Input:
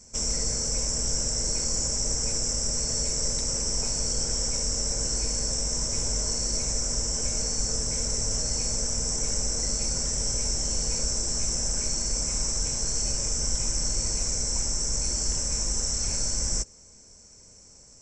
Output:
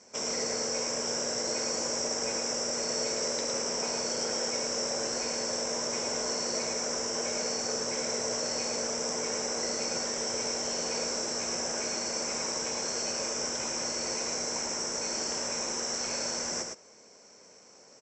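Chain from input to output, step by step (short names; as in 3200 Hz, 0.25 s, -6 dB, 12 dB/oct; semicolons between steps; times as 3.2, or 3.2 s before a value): HPF 400 Hz 12 dB/oct; air absorption 190 m; echo 0.11 s -5 dB; gain +6.5 dB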